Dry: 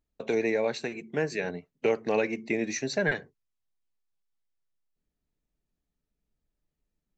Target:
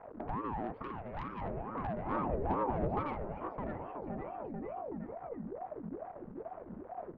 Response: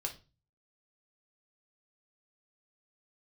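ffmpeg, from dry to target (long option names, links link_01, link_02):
-filter_complex "[0:a]aeval=exprs='val(0)+0.5*0.00891*sgn(val(0))':channel_layout=same,lowpass=frequency=1200:width=0.5412,lowpass=frequency=1200:width=1.3066,acompressor=threshold=-34dB:ratio=3,asplit=2[link_01][link_02];[link_02]aecho=0:1:610|1128|1569|1944|2262:0.631|0.398|0.251|0.158|0.1[link_03];[link_01][link_03]amix=inputs=2:normalize=0,asoftclip=type=tanh:threshold=-31.5dB,asettb=1/sr,asplit=3[link_04][link_05][link_06];[link_04]atrim=end=0.834[link_07];[link_05]atrim=start=0.83:end=1.41,asetpts=PTS-STARTPTS,afade=type=in:duration=0.004:curve=qsin,afade=type=out:start_time=0.576:duration=0.004:curve=qsin,aemphasis=mode=production:type=riaa[link_08];[link_06]atrim=start=1.406[link_09];[link_07][link_08]acrossfade=duration=0.004:curve1=hsin:curve2=qsin[link_10];[link_10][link_09]acrossfade=duration=0.004:curve1=qsin:curve2=hsin,afreqshift=-25,asettb=1/sr,asplit=3[link_11][link_12][link_13];[link_11]atrim=end=2.104[link_14];[link_12]atrim=start=2.1:end=3.01,asetpts=PTS-STARTPTS,afade=type=in:duration=0.004:curve=qsin,afade=type=out:start_time=0.906:duration=0.004:curve=qsin,lowshelf=frequency=280:gain=10.5[link_15];[link_13]atrim=start=3.006[link_16];[link_14][link_15]acrossfade=duration=0.004:curve1=hsin:curve2=qsin[link_17];[link_17][link_16]acrossfade=duration=0.004:curve1=qsin:curve2=hsin,aeval=exprs='val(0)*sin(2*PI*470*n/s+470*0.6/2.3*sin(2*PI*2.3*n/s))':channel_layout=same,volume=2.5dB"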